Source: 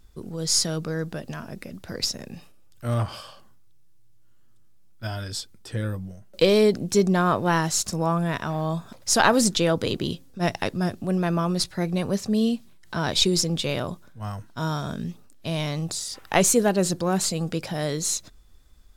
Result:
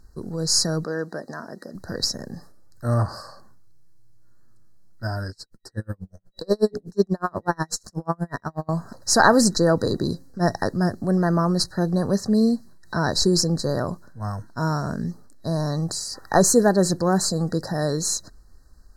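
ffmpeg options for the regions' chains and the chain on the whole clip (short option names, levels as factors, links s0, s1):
-filter_complex "[0:a]asettb=1/sr,asplit=3[s0][s1][s2];[s0]atrim=end=0.844[s3];[s1]atrim=start=0.84:end=1.75,asetpts=PTS-STARTPTS,afade=t=in:d=0.004:c=qsin,afade=t=out:st=0.906:d=0.004:c=qsin,highpass=270,highshelf=f=9500:g=-8.5[s4];[s2]atrim=start=1.746[s5];[s3][s4]acrossfade=d=0.004:c1=hsin:c2=qsin[s6];[s6][s5]acrossfade=d=0.004:c1=qsin:c2=hsin,asettb=1/sr,asplit=3[s7][s8][s9];[s7]atrim=end=5.304[s10];[s8]atrim=start=5.3:end=8.69,asetpts=PTS-STARTPTS,afade=t=in:d=0.004:c=qsin,afade=t=out:st=3.386:d=0.004:c=qsin,bandreject=f=60:t=h:w=6,bandreject=f=120:t=h:w=6,bandreject=f=180:t=h:w=6,bandreject=f=240:t=h:w=6,bandreject=f=300:t=h:w=6,bandreject=f=360:t=h:w=6,bandreject=f=420:t=h:w=6,bandreject=f=480:t=h:w=6,bandreject=f=540:t=h:w=6,aeval=exprs='val(0)*pow(10,-40*(0.5-0.5*cos(2*PI*8.2*n/s))/20)':c=same[s11];[s9]atrim=start=8.686[s12];[s10][s11]acrossfade=d=0.004:c1=hsin:c2=qsin[s13];[s13][s12]acrossfade=d=0.004:c1=qsin:c2=hsin,afftfilt=real='re*(1-between(b*sr/4096,1900,3900))':imag='im*(1-between(b*sr/4096,1900,3900))':win_size=4096:overlap=0.75,highshelf=f=9400:g=-7.5,volume=1.5"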